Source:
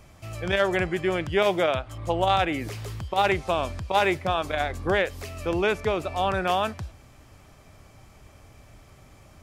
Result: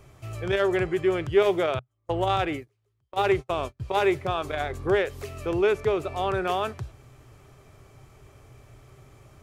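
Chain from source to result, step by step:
0:01.79–0:03.80: noise gate −27 dBFS, range −40 dB
thirty-one-band graphic EQ 125 Hz +10 dB, 200 Hz −5 dB, 400 Hz +10 dB, 1,250 Hz +3 dB, 5,000 Hz −3 dB
in parallel at −11 dB: soft clipping −22 dBFS, distortion −7 dB
on the sum: level −5 dB

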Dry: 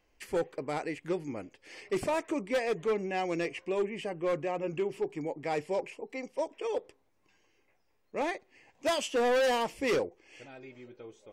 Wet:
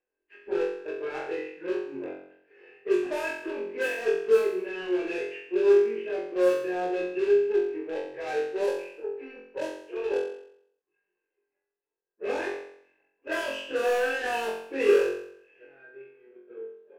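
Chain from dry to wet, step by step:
mains-hum notches 50/100/150/200 Hz
time stretch by phase vocoder 1.5×
bass and treble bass −13 dB, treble −9 dB
power curve on the samples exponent 1.4
in parallel at −4.5 dB: wrap-around overflow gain 37 dB
on the sum: low-pass that shuts in the quiet parts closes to 2,000 Hz, open at −28.5 dBFS
hollow resonant body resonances 390/1,600/2,600 Hz, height 17 dB, ringing for 35 ms
on a send: flutter between parallel walls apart 3.8 metres, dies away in 0.66 s
on the sum: level −2 dB

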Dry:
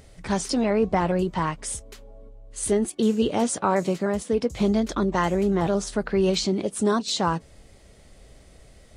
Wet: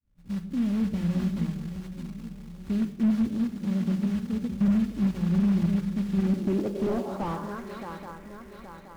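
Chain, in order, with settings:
fade in at the beginning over 0.60 s
0:06.33–0:06.74: high-pass filter 150 Hz 24 dB per octave
in parallel at −8 dB: sample-rate reduction 5,300 Hz
on the sum: feedback echo with a long and a short gap by turns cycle 823 ms, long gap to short 3 to 1, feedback 44%, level −11 dB
low-pass filter sweep 190 Hz → 2,100 Hz, 0:06.18–0:07.65
floating-point word with a short mantissa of 2 bits
on a send at −8 dB: convolution reverb RT60 0.90 s, pre-delay 4 ms
on the sum: slew-rate limiting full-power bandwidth 73 Hz
level −9 dB

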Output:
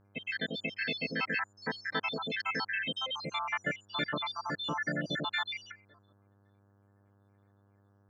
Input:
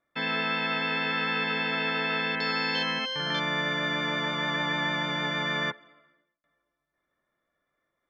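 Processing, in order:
time-frequency cells dropped at random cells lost 80%
hum with harmonics 100 Hz, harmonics 17, −66 dBFS −6 dB per octave
pitch-shifted copies added +3 semitones −16 dB

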